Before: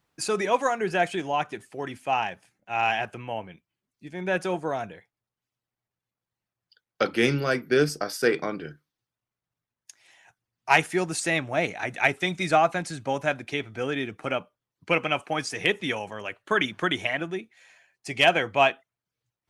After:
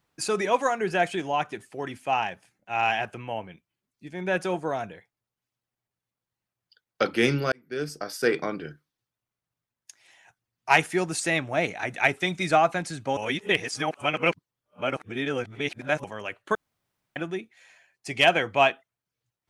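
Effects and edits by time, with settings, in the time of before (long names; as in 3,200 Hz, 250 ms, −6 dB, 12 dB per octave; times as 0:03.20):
0:07.52–0:08.36: fade in
0:13.17–0:16.04: reverse
0:16.55–0:17.16: fill with room tone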